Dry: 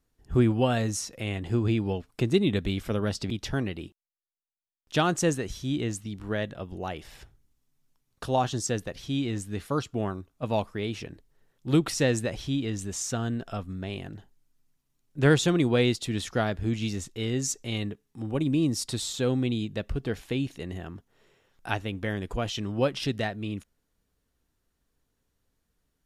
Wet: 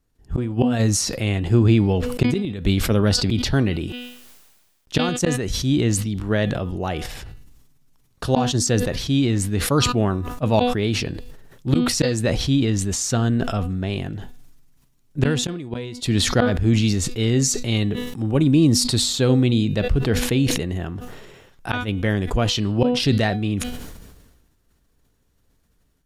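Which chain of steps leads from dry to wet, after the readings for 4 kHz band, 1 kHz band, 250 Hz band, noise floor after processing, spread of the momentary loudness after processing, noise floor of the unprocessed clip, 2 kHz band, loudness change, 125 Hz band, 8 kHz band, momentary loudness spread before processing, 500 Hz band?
+10.0 dB, +5.0 dB, +8.0 dB, -63 dBFS, 12 LU, -78 dBFS, +5.5 dB, +8.0 dB, +9.5 dB, +10.0 dB, 13 LU, +5.5 dB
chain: inverted gate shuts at -15 dBFS, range -29 dB; bass shelf 250 Hz +4.5 dB; level rider gain up to 6 dB; de-hum 245.9 Hz, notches 20; dynamic bell 4.4 kHz, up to +6 dB, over -50 dBFS, Q 5.4; decay stretcher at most 41 dB/s; trim +1 dB

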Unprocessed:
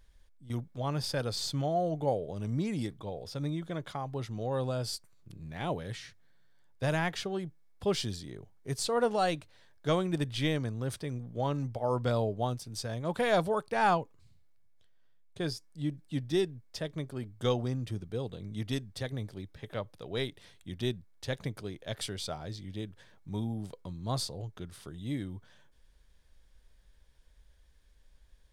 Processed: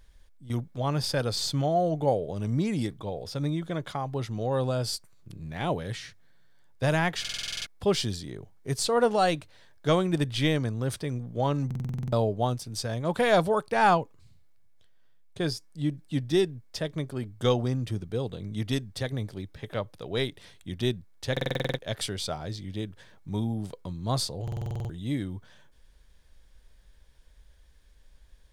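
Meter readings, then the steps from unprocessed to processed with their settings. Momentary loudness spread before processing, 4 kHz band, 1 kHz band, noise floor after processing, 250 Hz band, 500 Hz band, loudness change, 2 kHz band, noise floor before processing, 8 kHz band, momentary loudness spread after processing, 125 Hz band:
13 LU, +5.5 dB, +5.0 dB, -56 dBFS, +5.0 dB, +5.0 dB, +5.0 dB, +5.0 dB, -61 dBFS, +5.5 dB, 11 LU, +5.0 dB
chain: buffer glitch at 7.20/11.66/21.32/24.43 s, samples 2048, times 9; trim +5 dB

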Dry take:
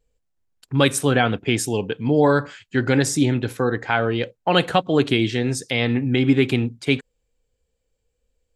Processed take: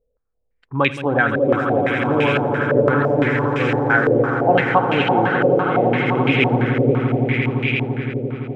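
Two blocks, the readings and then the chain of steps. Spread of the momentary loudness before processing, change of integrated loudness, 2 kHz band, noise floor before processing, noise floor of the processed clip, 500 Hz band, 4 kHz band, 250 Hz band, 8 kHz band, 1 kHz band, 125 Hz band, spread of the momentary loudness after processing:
6 LU, +3.0 dB, +6.0 dB, -74 dBFS, -70 dBFS, +4.5 dB, -4.0 dB, +1.5 dB, under -20 dB, +6.5 dB, +3.0 dB, 4 LU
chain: echo with a slow build-up 85 ms, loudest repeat 8, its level -8.5 dB; step-sequenced low-pass 5.9 Hz 550–2500 Hz; trim -4 dB

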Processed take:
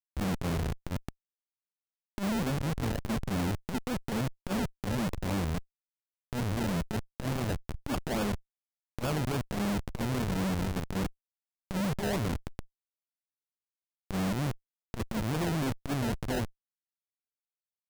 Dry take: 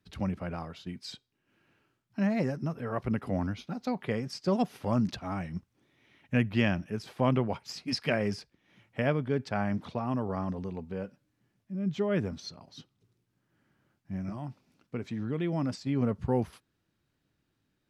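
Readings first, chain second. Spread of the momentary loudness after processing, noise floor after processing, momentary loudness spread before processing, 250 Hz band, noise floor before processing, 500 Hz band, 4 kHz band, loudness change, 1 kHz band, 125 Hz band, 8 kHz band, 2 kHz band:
8 LU, under -85 dBFS, 13 LU, -1.5 dB, -78 dBFS, -3.5 dB, +1.0 dB, -1.0 dB, -0.5 dB, +0.5 dB, +9.0 dB, -1.0 dB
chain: local Wiener filter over 25 samples; decimation with a swept rate 31×, swing 60% 3.5 Hz; Schmitt trigger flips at -40 dBFS; transformer saturation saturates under 78 Hz; trim +4.5 dB

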